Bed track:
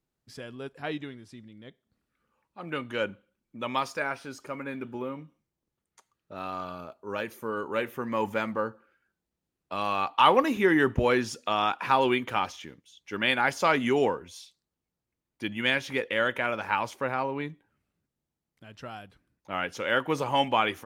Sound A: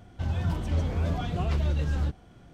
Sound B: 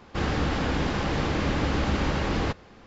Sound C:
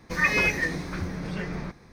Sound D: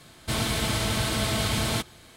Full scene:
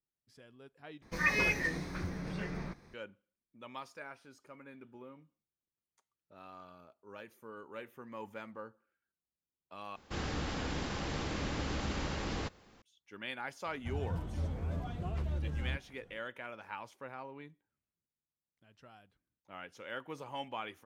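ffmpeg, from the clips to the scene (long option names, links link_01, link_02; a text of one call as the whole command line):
ffmpeg -i bed.wav -i cue0.wav -i cue1.wav -i cue2.wav -filter_complex "[0:a]volume=-16.5dB[link_01];[2:a]aemphasis=mode=production:type=50fm[link_02];[1:a]equalizer=frequency=4400:width_type=o:width=1.7:gain=-6[link_03];[link_01]asplit=3[link_04][link_05][link_06];[link_04]atrim=end=1.024[link_07];[3:a]atrim=end=1.92,asetpts=PTS-STARTPTS,volume=-7dB[link_08];[link_05]atrim=start=2.936:end=9.964[link_09];[link_02]atrim=end=2.86,asetpts=PTS-STARTPTS,volume=-11dB[link_10];[link_06]atrim=start=12.816[link_11];[link_03]atrim=end=2.53,asetpts=PTS-STARTPTS,volume=-9.5dB,afade=type=in:duration=0.004:curve=hsin,afade=type=out:start_time=2.526:duration=0.004:curve=hsin,adelay=13660[link_12];[link_07][link_08]acrossfade=duration=0.004:curve1=hsin:curve2=hsin[link_13];[link_13][link_09]acrossfade=duration=0.004:curve1=hsin:curve2=hsin[link_14];[link_14][link_10]acrossfade=duration=0.004:curve1=hsin:curve2=hsin[link_15];[link_15][link_11]acrossfade=duration=0.004:curve1=hsin:curve2=hsin[link_16];[link_16][link_12]amix=inputs=2:normalize=0" out.wav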